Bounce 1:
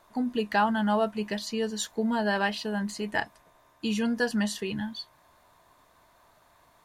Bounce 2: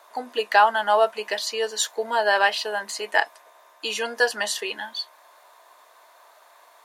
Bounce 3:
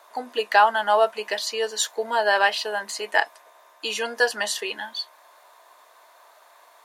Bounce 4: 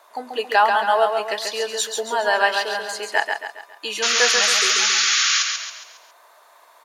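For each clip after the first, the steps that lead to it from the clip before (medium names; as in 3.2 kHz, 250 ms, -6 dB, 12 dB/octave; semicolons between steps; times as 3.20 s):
high-pass 470 Hz 24 dB/octave; trim +8.5 dB
no audible change
painted sound noise, 4.02–5.43 s, 1.1–7.1 kHz -20 dBFS; on a send: feedback delay 137 ms, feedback 44%, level -5 dB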